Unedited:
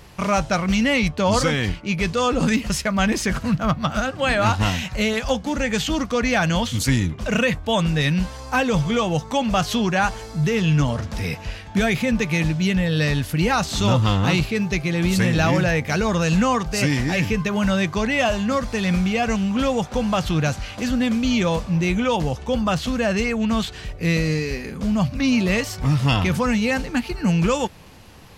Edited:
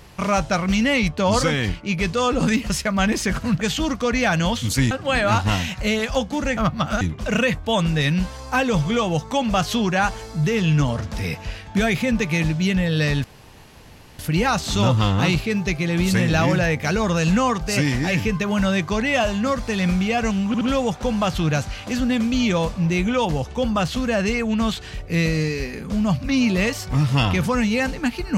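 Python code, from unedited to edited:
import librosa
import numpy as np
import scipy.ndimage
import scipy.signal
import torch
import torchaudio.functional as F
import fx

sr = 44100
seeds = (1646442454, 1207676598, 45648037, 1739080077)

y = fx.edit(x, sr, fx.swap(start_s=3.61, length_s=0.44, other_s=5.71, other_length_s=1.3),
    fx.insert_room_tone(at_s=13.24, length_s=0.95),
    fx.stutter(start_s=19.52, slice_s=0.07, count=3), tone=tone)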